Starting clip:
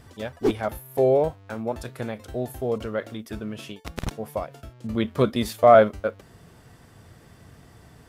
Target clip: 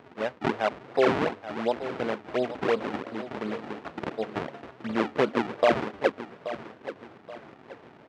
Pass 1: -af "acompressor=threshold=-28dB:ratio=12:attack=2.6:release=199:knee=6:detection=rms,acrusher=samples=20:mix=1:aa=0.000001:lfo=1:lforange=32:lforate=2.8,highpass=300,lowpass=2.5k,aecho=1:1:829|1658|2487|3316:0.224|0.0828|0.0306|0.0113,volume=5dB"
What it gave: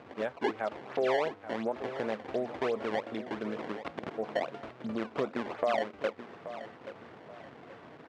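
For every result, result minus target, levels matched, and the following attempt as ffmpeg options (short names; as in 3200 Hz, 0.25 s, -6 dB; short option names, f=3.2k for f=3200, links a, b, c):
compressor: peak gain reduction +9 dB; decimation with a swept rate: distortion -9 dB
-af "acompressor=threshold=-18dB:ratio=12:attack=2.6:release=199:knee=6:detection=rms,acrusher=samples=20:mix=1:aa=0.000001:lfo=1:lforange=32:lforate=2.8,highpass=300,lowpass=2.5k,aecho=1:1:829|1658|2487|3316:0.224|0.0828|0.0306|0.0113,volume=5dB"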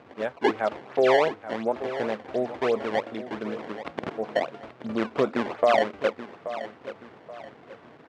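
decimation with a swept rate: distortion -8 dB
-af "acompressor=threshold=-18dB:ratio=12:attack=2.6:release=199:knee=6:detection=rms,acrusher=samples=48:mix=1:aa=0.000001:lfo=1:lforange=76.8:lforate=2.8,highpass=300,lowpass=2.5k,aecho=1:1:829|1658|2487|3316:0.224|0.0828|0.0306|0.0113,volume=5dB"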